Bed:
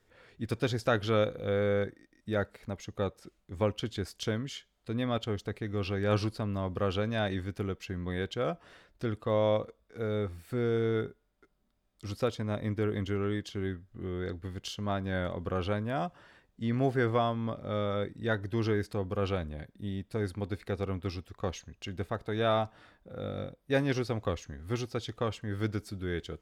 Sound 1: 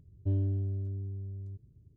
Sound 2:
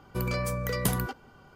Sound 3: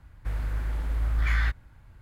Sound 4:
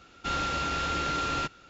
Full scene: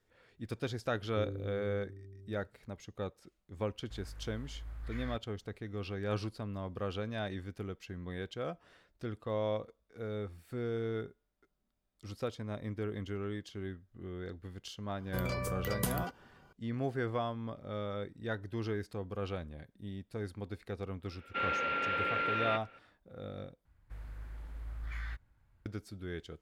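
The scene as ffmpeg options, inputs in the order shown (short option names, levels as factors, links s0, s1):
-filter_complex "[3:a]asplit=2[s0][s1];[0:a]volume=0.447[s2];[1:a]lowpass=f=400:t=q:w=3.8[s3];[4:a]highpass=320,equalizer=f=330:t=q:w=4:g=-8,equalizer=f=510:t=q:w=4:g=5,equalizer=f=730:t=q:w=4:g=-10,equalizer=f=1100:t=q:w=4:g=-8,equalizer=f=2300:t=q:w=4:g=4,lowpass=f=2600:w=0.5412,lowpass=f=2600:w=1.3066[s4];[s2]asplit=2[s5][s6];[s5]atrim=end=23.654[s7];[s1]atrim=end=2.01,asetpts=PTS-STARTPTS,volume=0.158[s8];[s6]atrim=start=25.656[s9];[s3]atrim=end=1.96,asetpts=PTS-STARTPTS,volume=0.211,afade=t=in:d=0.004:c=hsin,afade=t=out:st=1.956:d=0.004:c=hsin,adelay=900[s10];[s0]atrim=end=2.01,asetpts=PTS-STARTPTS,volume=0.126,afade=t=in:d=0.004:c=hsin,afade=t=out:st=2.006:d=0.004:c=hsin,adelay=160965S[s11];[2:a]atrim=end=1.55,asetpts=PTS-STARTPTS,volume=0.473,afade=t=in:d=0.004:c=hsin,afade=t=out:st=1.546:d=0.004:c=hsin,adelay=14980[s12];[s4]atrim=end=1.69,asetpts=PTS-STARTPTS,volume=0.944,afade=t=in:d=0.004:c=hsin,afade=t=out:st=1.686:d=0.004:c=hsin,adelay=21100[s13];[s7][s8]acrossfade=d=0.004:c1=hsin:c2=hsin[s14];[s14][s9]acrossfade=d=0.004:c1=hsin:c2=hsin[s15];[s15][s10][s11][s12][s13]amix=inputs=5:normalize=0"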